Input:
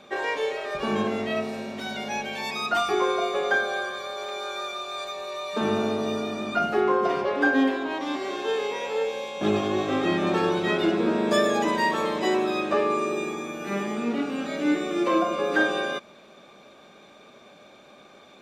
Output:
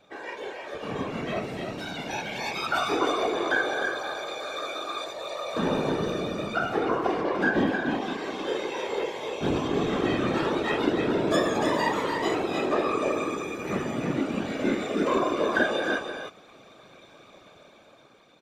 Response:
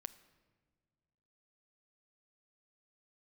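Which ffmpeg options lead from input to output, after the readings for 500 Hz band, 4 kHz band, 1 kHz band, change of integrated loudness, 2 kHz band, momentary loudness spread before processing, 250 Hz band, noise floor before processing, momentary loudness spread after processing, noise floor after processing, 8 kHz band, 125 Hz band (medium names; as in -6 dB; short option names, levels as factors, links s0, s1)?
-2.0 dB, -1.5 dB, -2.0 dB, -2.0 dB, -1.5 dB, 9 LU, -2.0 dB, -51 dBFS, 9 LU, -53 dBFS, -1.5 dB, +2.0 dB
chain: -af "aecho=1:1:305:0.531,dynaudnorm=f=290:g=9:m=2.82,afftfilt=real='hypot(re,im)*cos(2*PI*random(0))':imag='hypot(re,im)*sin(2*PI*random(1))':win_size=512:overlap=0.75,volume=0.631"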